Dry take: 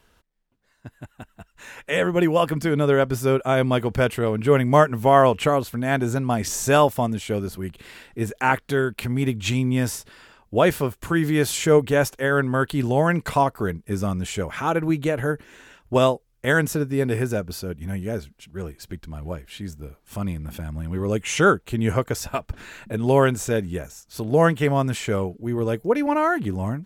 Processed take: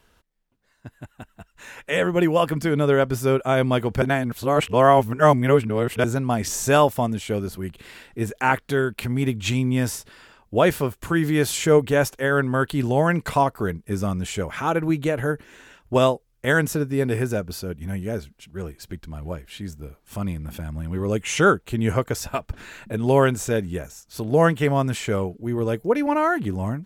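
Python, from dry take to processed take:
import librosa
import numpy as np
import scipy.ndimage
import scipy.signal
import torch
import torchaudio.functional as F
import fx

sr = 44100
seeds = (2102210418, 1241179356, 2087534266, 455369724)

y = fx.edit(x, sr, fx.reverse_span(start_s=4.02, length_s=2.02), tone=tone)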